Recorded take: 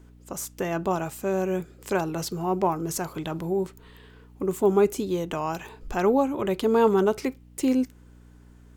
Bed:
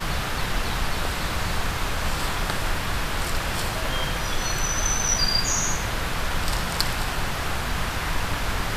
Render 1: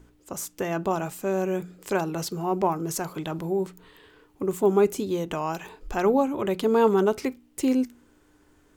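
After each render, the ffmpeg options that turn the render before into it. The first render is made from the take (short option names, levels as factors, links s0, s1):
-af "bandreject=f=60:t=h:w=4,bandreject=f=120:t=h:w=4,bandreject=f=180:t=h:w=4,bandreject=f=240:t=h:w=4"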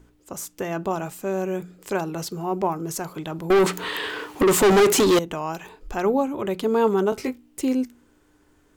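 -filter_complex "[0:a]asettb=1/sr,asplit=3[s0][s1][s2];[s0]atrim=end=3.504[s3];[s1]atrim=start=3.5:end=5.19,asetpts=PTS-STARTPTS,afade=t=in:d=0.004:c=qsin,afade=t=out:st=1.686:d=0.004:c=qsin,asplit=2[s4][s5];[s5]highpass=f=720:p=1,volume=44.7,asoftclip=type=tanh:threshold=0.355[s6];[s4][s6]amix=inputs=2:normalize=0,lowpass=f=6600:p=1,volume=0.501[s7];[s2]atrim=start=5.186[s8];[s3][s7]acrossfade=d=0.004:c1=hsin:c2=qsin[s9];[s9][s8]acrossfade=d=0.004:c1=qsin:c2=hsin,asettb=1/sr,asplit=3[s10][s11][s12];[s10]atrim=end=7.104[s13];[s11]atrim=start=7.1:end=7.61,asetpts=PTS-STARTPTS,afade=t=in:d=0.004:c=qsin,afade=t=out:st=0.506:d=0.004:c=qsin,asplit=2[s14][s15];[s15]adelay=20,volume=0.596[s16];[s14][s16]amix=inputs=2:normalize=0,atrim=end_sample=22491[s17];[s12]atrim=start=7.606[s18];[s13][s17]acrossfade=d=0.004:c1=hsin:c2=qsin[s19];[s19][s18]acrossfade=d=0.004:c1=qsin:c2=hsin"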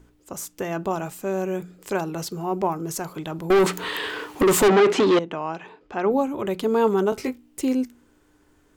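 -filter_complex "[0:a]asettb=1/sr,asplit=3[s0][s1][s2];[s0]atrim=end=4.684[s3];[s1]atrim=start=4.68:end=6.11,asetpts=PTS-STARTPTS,afade=t=in:d=0.004:c=qsin,afade=t=out:st=1.426:d=0.004:c=qsin,highpass=160,lowpass=3300[s4];[s2]atrim=start=6.106[s5];[s3][s4]acrossfade=d=0.004:c1=hsin:c2=qsin[s6];[s6][s5]acrossfade=d=0.004:c1=qsin:c2=hsin"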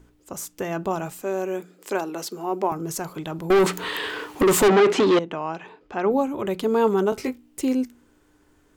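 -filter_complex "[0:a]asettb=1/sr,asplit=3[s0][s1][s2];[s0]atrim=end=1.224[s3];[s1]atrim=start=1.22:end=2.72,asetpts=PTS-STARTPTS,afade=t=in:d=0.004:c=qsin,afade=t=out:st=1.496:d=0.004:c=qsin,highpass=f=230:w=0.5412,highpass=f=230:w=1.3066[s4];[s2]atrim=start=2.716[s5];[s3][s4]acrossfade=d=0.004:c1=hsin:c2=qsin[s6];[s6][s5]acrossfade=d=0.004:c1=qsin:c2=hsin"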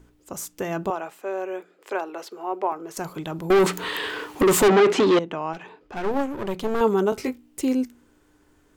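-filter_complex "[0:a]asettb=1/sr,asplit=3[s0][s1][s2];[s0]atrim=end=0.904[s3];[s1]atrim=start=0.9:end=2.97,asetpts=PTS-STARTPTS,afade=t=in:d=0.004:c=qsin,afade=t=out:st=2.066:d=0.004:c=qsin,acrossover=split=340 3400:gain=0.0631 1 0.224[s4][s5][s6];[s4][s5][s6]amix=inputs=3:normalize=0[s7];[s2]atrim=start=2.966[s8];[s3][s7]acrossfade=d=0.004:c1=hsin:c2=qsin[s9];[s9][s8]acrossfade=d=0.004:c1=qsin:c2=hsin,asettb=1/sr,asplit=3[s10][s11][s12];[s10]atrim=end=5.534[s13];[s11]atrim=start=5.53:end=6.81,asetpts=PTS-STARTPTS,afade=t=in:d=0.004:c=qsin,afade=t=out:st=1.276:d=0.004:c=qsin,aeval=exprs='clip(val(0),-1,0.0188)':c=same[s14];[s12]atrim=start=6.806[s15];[s13][s14]acrossfade=d=0.004:c1=hsin:c2=qsin[s16];[s16][s15]acrossfade=d=0.004:c1=qsin:c2=hsin"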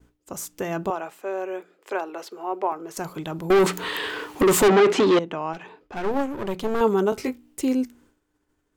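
-af "agate=range=0.0224:threshold=0.00316:ratio=3:detection=peak"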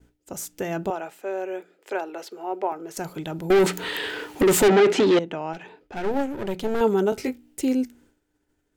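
-af "equalizer=f=1100:w=6.1:g=-11.5"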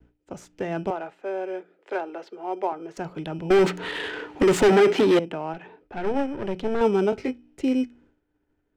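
-filter_complex "[0:a]acrossover=split=310|770|2000[s0][s1][s2][s3];[s0]acrusher=samples=16:mix=1:aa=0.000001[s4];[s4][s1][s2][s3]amix=inputs=4:normalize=0,adynamicsmooth=sensitivity=2:basefreq=2600"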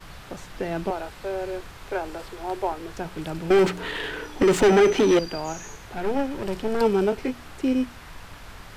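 -filter_complex "[1:a]volume=0.15[s0];[0:a][s0]amix=inputs=2:normalize=0"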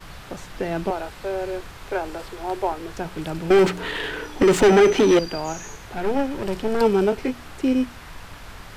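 -af "volume=1.33"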